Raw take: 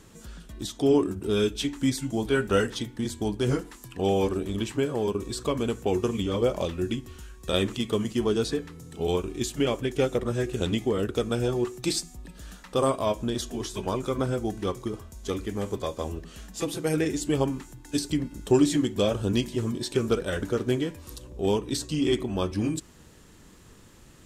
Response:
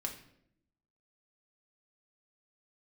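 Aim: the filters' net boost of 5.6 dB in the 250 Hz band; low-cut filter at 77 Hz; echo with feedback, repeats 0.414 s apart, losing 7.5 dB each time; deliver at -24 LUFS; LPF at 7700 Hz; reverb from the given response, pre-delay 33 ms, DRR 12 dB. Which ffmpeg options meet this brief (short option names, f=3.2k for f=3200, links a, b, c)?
-filter_complex "[0:a]highpass=77,lowpass=7.7k,equalizer=f=250:t=o:g=7,aecho=1:1:414|828|1242|1656|2070:0.422|0.177|0.0744|0.0312|0.0131,asplit=2[a][b];[1:a]atrim=start_sample=2205,adelay=33[c];[b][c]afir=irnorm=-1:irlink=0,volume=-12dB[d];[a][d]amix=inputs=2:normalize=0,volume=-0.5dB"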